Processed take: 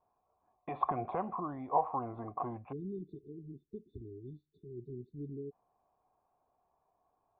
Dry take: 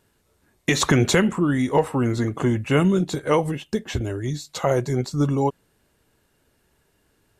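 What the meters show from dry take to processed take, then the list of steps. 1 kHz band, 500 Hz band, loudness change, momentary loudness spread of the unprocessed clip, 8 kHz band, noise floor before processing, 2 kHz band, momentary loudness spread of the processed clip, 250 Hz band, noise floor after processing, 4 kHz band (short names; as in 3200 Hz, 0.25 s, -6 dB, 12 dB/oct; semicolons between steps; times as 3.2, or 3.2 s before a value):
-7.5 dB, -19.0 dB, -17.5 dB, 9 LU, under -40 dB, -66 dBFS, -30.5 dB, 16 LU, -22.0 dB, -80 dBFS, under -40 dB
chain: vibrato 0.76 Hz 35 cents; in parallel at 0 dB: limiter -16 dBFS, peak gain reduction 9 dB; on the sum: vocal tract filter a; spectral delete 2.72–5.52, 450–3500 Hz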